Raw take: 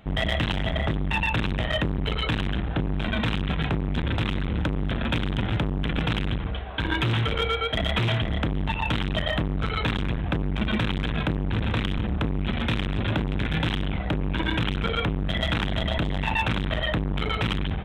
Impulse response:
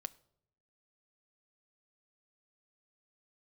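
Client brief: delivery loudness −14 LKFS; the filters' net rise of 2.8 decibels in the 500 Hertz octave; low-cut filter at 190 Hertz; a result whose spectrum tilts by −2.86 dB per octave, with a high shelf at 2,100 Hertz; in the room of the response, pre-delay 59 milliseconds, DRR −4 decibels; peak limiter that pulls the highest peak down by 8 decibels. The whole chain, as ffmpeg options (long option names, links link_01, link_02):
-filter_complex "[0:a]highpass=190,equalizer=frequency=500:width_type=o:gain=3.5,highshelf=frequency=2100:gain=3.5,alimiter=limit=-18.5dB:level=0:latency=1,asplit=2[link_01][link_02];[1:a]atrim=start_sample=2205,adelay=59[link_03];[link_02][link_03]afir=irnorm=-1:irlink=0,volume=7.5dB[link_04];[link_01][link_04]amix=inputs=2:normalize=0,volume=10dB"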